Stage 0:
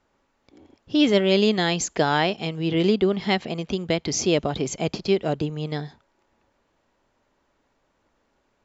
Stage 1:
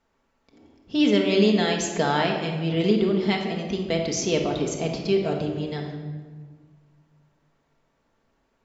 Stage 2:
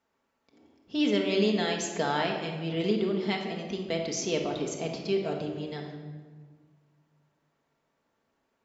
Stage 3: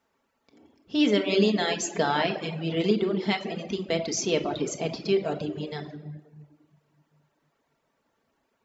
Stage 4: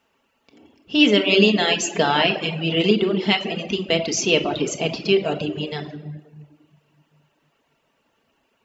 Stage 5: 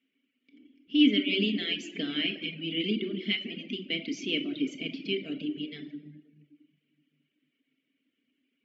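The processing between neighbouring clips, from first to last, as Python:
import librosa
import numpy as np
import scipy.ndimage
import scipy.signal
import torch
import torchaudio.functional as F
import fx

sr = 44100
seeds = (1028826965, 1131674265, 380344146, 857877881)

y1 = fx.room_shoebox(x, sr, seeds[0], volume_m3=1500.0, walls='mixed', distance_m=1.6)
y1 = y1 * librosa.db_to_amplitude(-4.0)
y2 = fx.highpass(y1, sr, hz=170.0, slope=6)
y2 = y2 * librosa.db_to_amplitude(-5.0)
y3 = fx.dereverb_blind(y2, sr, rt60_s=0.73)
y3 = y3 * librosa.db_to_amplitude(4.5)
y4 = fx.peak_eq(y3, sr, hz=2800.0, db=11.5, octaves=0.3)
y4 = y4 * librosa.db_to_amplitude(5.5)
y5 = fx.vowel_filter(y4, sr, vowel='i')
y5 = y5 * librosa.db_to_amplitude(1.5)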